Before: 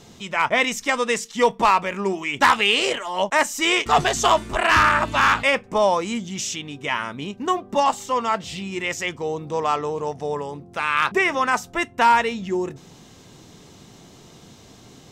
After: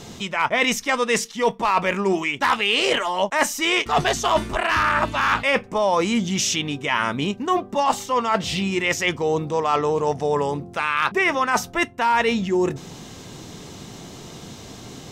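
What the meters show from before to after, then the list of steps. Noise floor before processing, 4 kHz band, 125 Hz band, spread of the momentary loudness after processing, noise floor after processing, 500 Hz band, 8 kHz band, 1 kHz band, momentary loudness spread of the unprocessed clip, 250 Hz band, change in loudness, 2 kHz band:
−48 dBFS, +0.5 dB, +4.0 dB, 19 LU, −41 dBFS, +1.0 dB, +1.5 dB, −1.5 dB, 10 LU, +3.5 dB, 0.0 dB, −0.5 dB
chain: dynamic equaliser 7,500 Hz, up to −6 dB, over −49 dBFS, Q 3.8
reversed playback
downward compressor 6 to 1, threshold −25 dBFS, peak gain reduction 13 dB
reversed playback
level +8 dB

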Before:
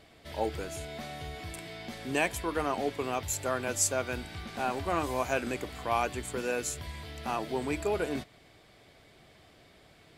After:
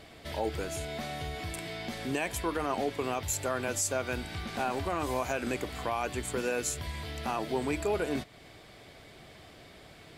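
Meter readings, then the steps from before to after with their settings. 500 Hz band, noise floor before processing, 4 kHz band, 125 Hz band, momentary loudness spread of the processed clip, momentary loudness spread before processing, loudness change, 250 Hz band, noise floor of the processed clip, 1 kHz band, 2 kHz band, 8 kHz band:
0.0 dB, −59 dBFS, +1.0 dB, +1.5 dB, 21 LU, 11 LU, −0.5 dB, +1.0 dB, −53 dBFS, −1.0 dB, −0.5 dB, −1.0 dB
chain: in parallel at 0 dB: downward compressor, threshold −44 dBFS, peak gain reduction 19.5 dB
on the sum: brickwall limiter −20 dBFS, peak gain reduction 6.5 dB

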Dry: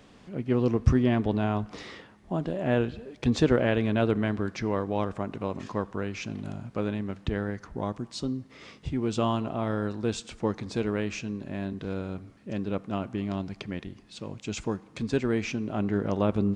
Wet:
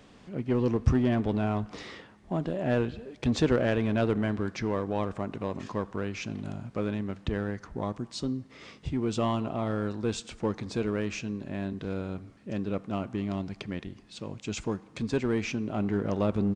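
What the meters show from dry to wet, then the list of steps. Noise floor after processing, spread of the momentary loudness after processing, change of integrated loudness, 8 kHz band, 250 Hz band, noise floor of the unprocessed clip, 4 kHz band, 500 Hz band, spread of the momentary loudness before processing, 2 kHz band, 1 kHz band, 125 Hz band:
−55 dBFS, 12 LU, −1.5 dB, −0.5 dB, −1.0 dB, −54 dBFS, −1.0 dB, −1.5 dB, 13 LU, −1.5 dB, −1.5 dB, −1.5 dB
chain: in parallel at −11 dB: wave folding −23 dBFS
on the sum: downsampling to 22,050 Hz
level −2.5 dB

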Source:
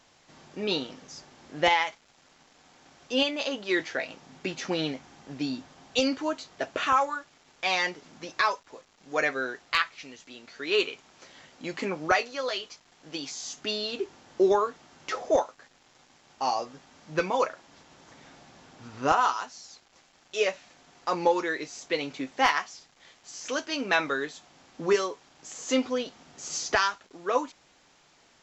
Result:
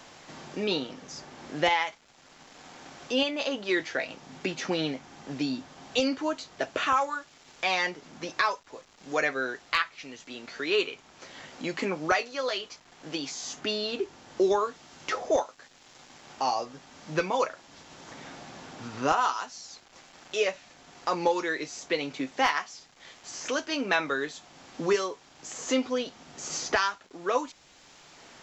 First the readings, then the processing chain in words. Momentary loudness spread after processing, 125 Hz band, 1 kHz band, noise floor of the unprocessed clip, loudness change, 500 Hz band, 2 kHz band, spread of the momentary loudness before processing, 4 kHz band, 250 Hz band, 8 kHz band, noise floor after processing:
18 LU, +1.0 dB, −1.5 dB, −62 dBFS, −1.0 dB, −0.5 dB, −0.5 dB, 18 LU, −1.0 dB, 0.0 dB, can't be measured, −57 dBFS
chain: multiband upward and downward compressor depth 40%

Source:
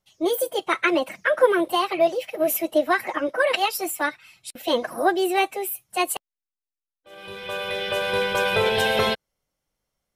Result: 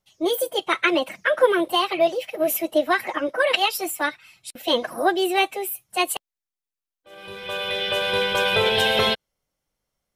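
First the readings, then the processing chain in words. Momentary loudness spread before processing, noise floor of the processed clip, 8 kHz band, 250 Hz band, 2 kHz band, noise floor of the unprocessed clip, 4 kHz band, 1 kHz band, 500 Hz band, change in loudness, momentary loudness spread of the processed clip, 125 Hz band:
11 LU, below −85 dBFS, 0.0 dB, 0.0 dB, +1.0 dB, below −85 dBFS, +5.0 dB, 0.0 dB, 0.0 dB, +1.0 dB, 10 LU, 0.0 dB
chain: dynamic equaliser 3,300 Hz, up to +6 dB, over −40 dBFS, Q 2

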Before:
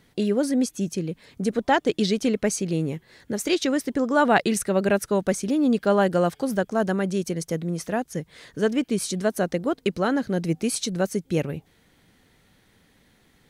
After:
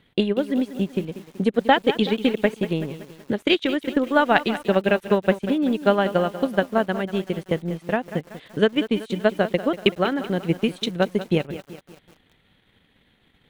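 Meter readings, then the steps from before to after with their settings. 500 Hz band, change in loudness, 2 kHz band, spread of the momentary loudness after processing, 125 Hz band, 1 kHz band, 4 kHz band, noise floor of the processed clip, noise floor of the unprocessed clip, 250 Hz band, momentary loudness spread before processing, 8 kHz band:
+2.0 dB, +1.5 dB, +3.5 dB, 8 LU, +0.5 dB, +2.0 dB, +5.0 dB, −62 dBFS, −62 dBFS, +1.0 dB, 8 LU, below −15 dB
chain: high shelf with overshoot 4,300 Hz −8.5 dB, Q 3
transient designer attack +9 dB, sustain −11 dB
feedback echo at a low word length 190 ms, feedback 55%, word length 6 bits, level −13 dB
level −2.5 dB

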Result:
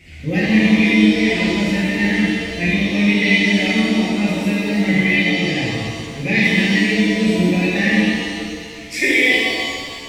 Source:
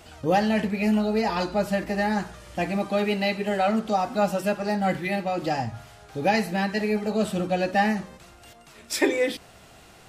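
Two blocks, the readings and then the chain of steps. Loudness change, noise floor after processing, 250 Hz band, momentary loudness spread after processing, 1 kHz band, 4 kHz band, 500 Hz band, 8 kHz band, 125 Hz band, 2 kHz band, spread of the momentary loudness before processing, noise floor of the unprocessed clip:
+9.0 dB, −33 dBFS, +11.0 dB, 9 LU, −5.0 dB, +14.0 dB, +1.5 dB, +7.0 dB, +11.0 dB, +14.5 dB, 7 LU, −51 dBFS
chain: drawn EQ curve 190 Hz 0 dB, 410 Hz −7 dB, 800 Hz −21 dB, 1,400 Hz −18 dB, 2,100 Hz +10 dB, 3,100 Hz −6 dB, 5,700 Hz −8 dB, 13,000 Hz −13 dB
reverb with rising layers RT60 1.9 s, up +7 semitones, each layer −8 dB, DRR −8 dB
level +2.5 dB

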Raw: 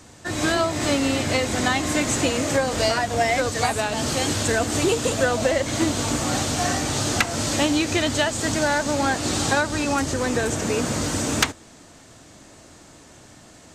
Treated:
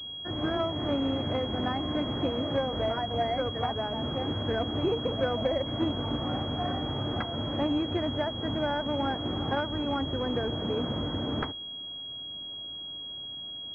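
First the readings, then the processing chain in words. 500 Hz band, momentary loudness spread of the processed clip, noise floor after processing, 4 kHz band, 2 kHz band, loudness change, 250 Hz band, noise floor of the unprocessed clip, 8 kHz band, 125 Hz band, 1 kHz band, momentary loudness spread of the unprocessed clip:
−7.0 dB, 8 LU, −40 dBFS, −4.5 dB, −15.5 dB, −8.5 dB, −6.0 dB, −48 dBFS, below −40 dB, −5.5 dB, −8.0 dB, 2 LU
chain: high-frequency loss of the air 430 metres
switching amplifier with a slow clock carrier 3,300 Hz
level −5.5 dB

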